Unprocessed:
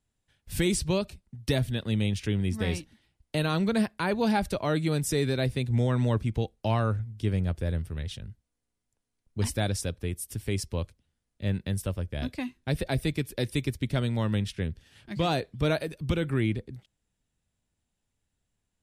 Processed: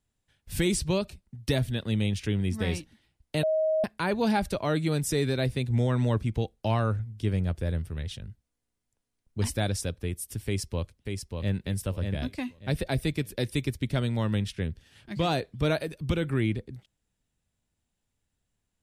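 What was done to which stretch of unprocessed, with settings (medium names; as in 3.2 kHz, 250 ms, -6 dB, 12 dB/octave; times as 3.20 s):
3.43–3.84 s: bleep 630 Hz -22 dBFS
10.46–11.58 s: echo throw 590 ms, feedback 25%, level -4.5 dB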